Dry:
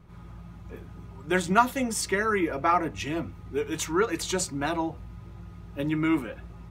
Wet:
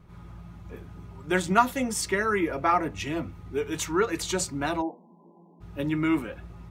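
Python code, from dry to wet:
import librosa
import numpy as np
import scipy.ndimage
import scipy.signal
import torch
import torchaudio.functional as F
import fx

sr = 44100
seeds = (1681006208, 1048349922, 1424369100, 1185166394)

y = fx.brickwall_bandpass(x, sr, low_hz=180.0, high_hz=1100.0, at=(4.81, 5.6), fade=0.02)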